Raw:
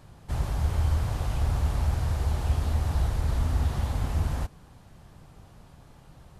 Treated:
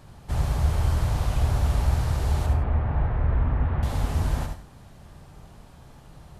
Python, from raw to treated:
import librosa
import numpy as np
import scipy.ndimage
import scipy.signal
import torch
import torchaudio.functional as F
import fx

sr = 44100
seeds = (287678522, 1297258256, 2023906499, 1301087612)

y = fx.lowpass(x, sr, hz=2200.0, slope=24, at=(2.46, 3.83))
y = y + 10.0 ** (-7.0 / 20.0) * np.pad(y, (int(70 * sr / 1000.0), 0))[:len(y)]
y = fx.rev_gated(y, sr, seeds[0], gate_ms=120, shape='rising', drr_db=9.0)
y = y * 10.0 ** (2.5 / 20.0)